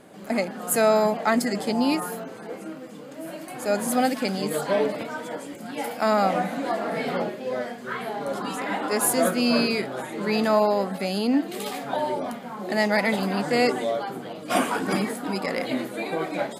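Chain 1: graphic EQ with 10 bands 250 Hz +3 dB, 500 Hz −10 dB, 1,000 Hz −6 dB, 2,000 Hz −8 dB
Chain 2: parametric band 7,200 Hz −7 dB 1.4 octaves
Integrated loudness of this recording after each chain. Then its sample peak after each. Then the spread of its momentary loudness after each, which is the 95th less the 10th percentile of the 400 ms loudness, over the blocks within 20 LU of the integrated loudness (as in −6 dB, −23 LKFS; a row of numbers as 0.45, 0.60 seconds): −28.5, −25.5 LKFS; −10.0, −8.0 dBFS; 15, 13 LU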